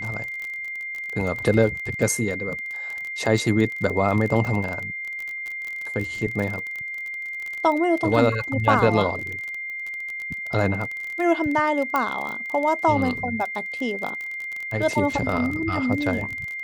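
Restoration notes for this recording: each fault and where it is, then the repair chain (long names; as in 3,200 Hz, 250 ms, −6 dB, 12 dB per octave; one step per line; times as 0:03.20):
surface crackle 29 per second −27 dBFS
whistle 2,100 Hz −29 dBFS
0:11.96: click −10 dBFS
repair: click removal
notch filter 2,100 Hz, Q 30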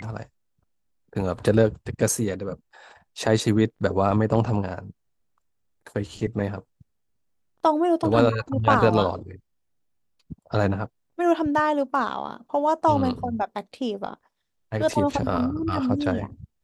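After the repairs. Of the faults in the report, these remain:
0:11.96: click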